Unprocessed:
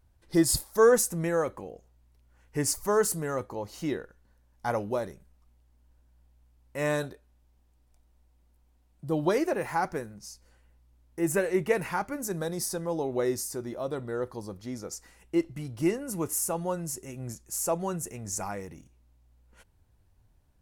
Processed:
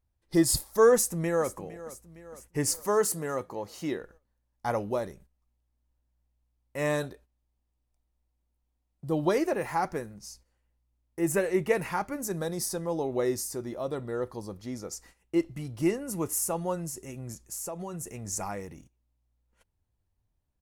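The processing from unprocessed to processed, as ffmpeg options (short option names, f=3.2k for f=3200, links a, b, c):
-filter_complex "[0:a]asplit=2[a][b];[b]afade=t=in:st=0.94:d=0.01,afade=t=out:st=1.54:d=0.01,aecho=0:1:460|920|1380|1840|2300|2760:0.158489|0.0950936|0.0570562|0.0342337|0.0205402|0.0123241[c];[a][c]amix=inputs=2:normalize=0,asettb=1/sr,asplit=3[d][e][f];[d]atrim=end=2.764[g];[e]atrim=start=2.76:end=4.01,asetpts=PTS-STARTPTS,afade=t=in:d=0.004:c=qsin,afade=t=out:st=1.246:d=0.004:c=qsin,highpass=f=170:p=1[h];[f]atrim=start=4.006[i];[g][h]acrossfade=d=0.004:c1=hsin:c2=qsin[j];[j][i]acrossfade=d=0.004:c1=qsin:c2=hsin,asettb=1/sr,asplit=3[k][l][m];[k]atrim=end=16.874[n];[l]atrim=start=16.87:end=18.21,asetpts=PTS-STARTPTS,afade=t=in:d=0.004:c=qsin,afade=t=out:st=1.336:d=0.004:c=qsin,acompressor=threshold=-33dB:ratio=6:attack=3.2:release=140:knee=1:detection=peak[o];[m]atrim=start=18.206[p];[n][o]acrossfade=d=0.004:c1=hsin:c2=qsin[q];[q][p]acrossfade=d=0.004:c1=qsin:c2=hsin,bandreject=f=1.5k:w=18,agate=range=-13dB:threshold=-53dB:ratio=16:detection=peak"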